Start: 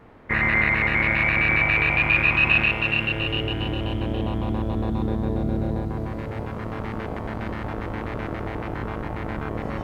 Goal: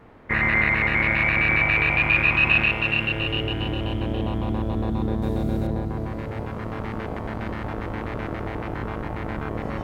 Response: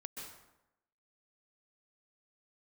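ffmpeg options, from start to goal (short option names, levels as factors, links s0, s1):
-filter_complex "[0:a]asettb=1/sr,asplit=3[s0][s1][s2];[s0]atrim=end=5.224[s3];[s1]atrim=start=5.22:end=5.67,asetpts=PTS-STARTPTS,afade=t=in:d=0.004:c=qsin,afade=t=out:st=0.446:d=0.004:c=qsin,highshelf=f=3900:g=11.5[s4];[s2]atrim=start=5.666[s5];[s3][s4]acrossfade=d=0.004:c1=hsin:c2=qsin[s6];[s6][s5]acrossfade=d=0.004:c1=qsin:c2=hsin"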